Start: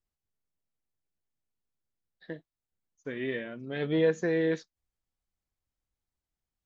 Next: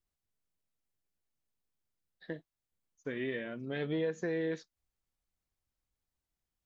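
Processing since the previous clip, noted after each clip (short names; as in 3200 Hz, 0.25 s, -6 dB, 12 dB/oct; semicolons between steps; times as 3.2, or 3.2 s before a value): compressor 3:1, threshold -33 dBFS, peak gain reduction 9.5 dB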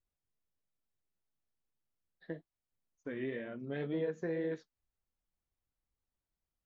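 high shelf 2600 Hz -11 dB; flange 2 Hz, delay 1.4 ms, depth 6.3 ms, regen -58%; gain +2.5 dB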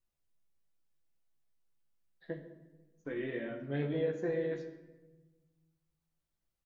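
doubler 14 ms -5.5 dB; shoebox room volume 700 m³, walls mixed, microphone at 0.76 m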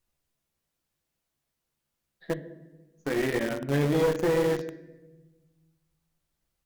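in parallel at -5.5 dB: bit-crush 6-bit; on the sum: one-sided clip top -33 dBFS, bottom -23 dBFS; gain +8 dB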